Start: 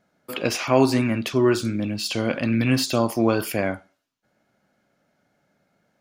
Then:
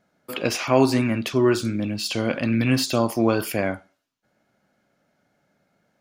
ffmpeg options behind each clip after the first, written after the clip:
ffmpeg -i in.wav -af anull out.wav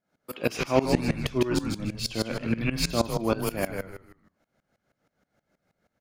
ffmpeg -i in.wav -filter_complex "[0:a]asplit=2[link_01][link_02];[link_02]asplit=4[link_03][link_04][link_05][link_06];[link_03]adelay=150,afreqshift=-91,volume=-4.5dB[link_07];[link_04]adelay=300,afreqshift=-182,volume=-14.7dB[link_08];[link_05]adelay=450,afreqshift=-273,volume=-24.8dB[link_09];[link_06]adelay=600,afreqshift=-364,volume=-35dB[link_10];[link_07][link_08][link_09][link_10]amix=inputs=4:normalize=0[link_11];[link_01][link_11]amix=inputs=2:normalize=0,aeval=exprs='val(0)*pow(10,-20*if(lt(mod(-6.3*n/s,1),2*abs(-6.3)/1000),1-mod(-6.3*n/s,1)/(2*abs(-6.3)/1000),(mod(-6.3*n/s,1)-2*abs(-6.3)/1000)/(1-2*abs(-6.3)/1000))/20)':channel_layout=same" out.wav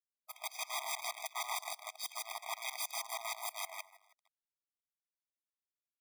ffmpeg -i in.wav -af "aeval=exprs='(mod(13.3*val(0)+1,2)-1)/13.3':channel_layout=same,acrusher=bits=6:dc=4:mix=0:aa=0.000001,afftfilt=real='re*eq(mod(floor(b*sr/1024/640),2),1)':imag='im*eq(mod(floor(b*sr/1024/640),2),1)':win_size=1024:overlap=0.75,volume=-6.5dB" out.wav

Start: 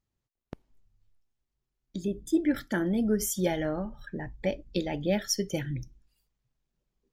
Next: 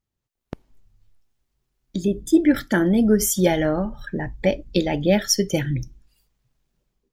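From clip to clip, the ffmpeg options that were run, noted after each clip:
ffmpeg -i in.wav -af "dynaudnorm=framelen=160:gausssize=5:maxgain=9.5dB" out.wav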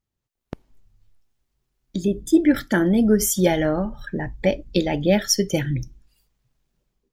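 ffmpeg -i in.wav -af anull out.wav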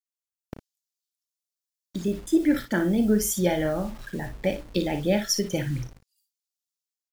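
ffmpeg -i in.wav -filter_complex "[0:a]acrossover=split=3900[link_01][link_02];[link_01]acrusher=bits=6:mix=0:aa=0.000001[link_03];[link_03][link_02]amix=inputs=2:normalize=0,aecho=1:1:34|57:0.251|0.316,volume=-5.5dB" out.wav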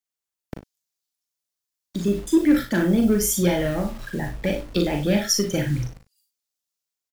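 ffmpeg -i in.wav -filter_complex "[0:a]acrossover=split=410|1900[link_01][link_02][link_03];[link_02]volume=31dB,asoftclip=hard,volume=-31dB[link_04];[link_01][link_04][link_03]amix=inputs=3:normalize=0,asplit=2[link_05][link_06];[link_06]adelay=40,volume=-6.5dB[link_07];[link_05][link_07]amix=inputs=2:normalize=0,volume=3.5dB" out.wav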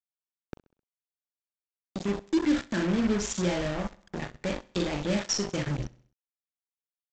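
ffmpeg -i in.wav -af "aresample=16000,acrusher=bits=3:mix=0:aa=0.5,aresample=44100,aecho=1:1:65|130|195|260:0.0794|0.0405|0.0207|0.0105,volume=-7.5dB" out.wav

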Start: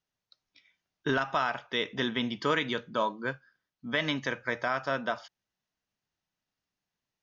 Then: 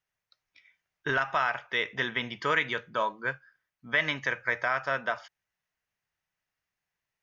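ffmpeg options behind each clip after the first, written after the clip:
ffmpeg -i in.wav -af "equalizer=frequency=250:width_type=o:width=1:gain=-9,equalizer=frequency=2000:width_type=o:width=1:gain=7,equalizer=frequency=4000:width_type=o:width=1:gain=-5" out.wav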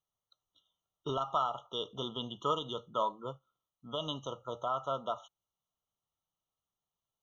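ffmpeg -i in.wav -af "afftfilt=real='re*eq(mod(floor(b*sr/1024/1400),2),0)':imag='im*eq(mod(floor(b*sr/1024/1400),2),0)':win_size=1024:overlap=0.75,volume=-3dB" out.wav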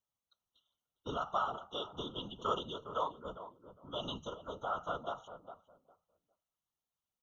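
ffmpeg -i in.wav -filter_complex "[0:a]asplit=2[link_01][link_02];[link_02]adelay=405,lowpass=frequency=1000:poles=1,volume=-10dB,asplit=2[link_03][link_04];[link_04]adelay=405,lowpass=frequency=1000:poles=1,volume=0.21,asplit=2[link_05][link_06];[link_06]adelay=405,lowpass=frequency=1000:poles=1,volume=0.21[link_07];[link_01][link_03][link_05][link_07]amix=inputs=4:normalize=0,afftfilt=real='hypot(re,im)*cos(2*PI*random(0))':imag='hypot(re,im)*sin(2*PI*random(1))':win_size=512:overlap=0.75,volume=2.5dB" out.wav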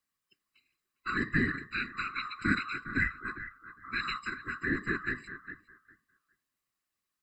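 ffmpeg -i in.wav -af "afftfilt=real='real(if(lt(b,960),b+48*(1-2*mod(floor(b/48),2)),b),0)':imag='imag(if(lt(b,960),b+48*(1-2*mod(floor(b/48),2)),b),0)':win_size=2048:overlap=0.75,volume=6dB" out.wav

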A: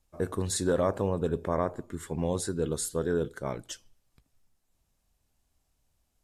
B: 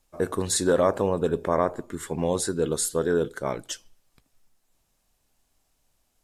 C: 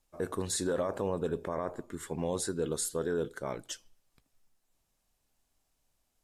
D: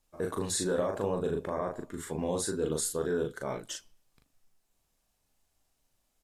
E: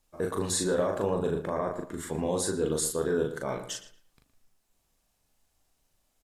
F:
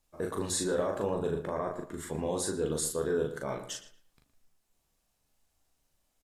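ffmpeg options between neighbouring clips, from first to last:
ffmpeg -i in.wav -af "equalizer=frequency=64:width=0.42:gain=-9,volume=6.5dB" out.wav
ffmpeg -i in.wav -af "alimiter=limit=-16dB:level=0:latency=1:release=21,volume=-6.5dB" out.wav
ffmpeg -i in.wav -filter_complex "[0:a]asplit=2[link_01][link_02];[link_02]adelay=39,volume=-3.5dB[link_03];[link_01][link_03]amix=inputs=2:normalize=0" out.wav
ffmpeg -i in.wav -filter_complex "[0:a]asplit=2[link_01][link_02];[link_02]adelay=115,lowpass=frequency=3000:poles=1,volume=-11dB,asplit=2[link_03][link_04];[link_04]adelay=115,lowpass=frequency=3000:poles=1,volume=0.28,asplit=2[link_05][link_06];[link_06]adelay=115,lowpass=frequency=3000:poles=1,volume=0.28[link_07];[link_01][link_03][link_05][link_07]amix=inputs=4:normalize=0,volume=2.5dB" out.wav
ffmpeg -i in.wav -filter_complex "[0:a]asplit=2[link_01][link_02];[link_02]adelay=14,volume=-12dB[link_03];[link_01][link_03]amix=inputs=2:normalize=0,volume=-3dB" out.wav

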